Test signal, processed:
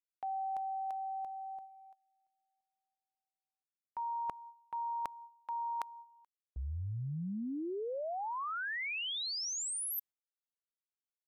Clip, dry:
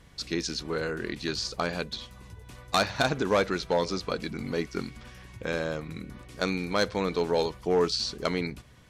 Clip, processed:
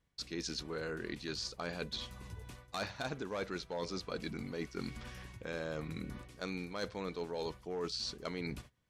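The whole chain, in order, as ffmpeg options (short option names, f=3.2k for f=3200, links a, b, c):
-af "agate=range=-23dB:threshold=-48dB:ratio=16:detection=peak,areverse,acompressor=threshold=-36dB:ratio=6,areverse,volume=-1dB"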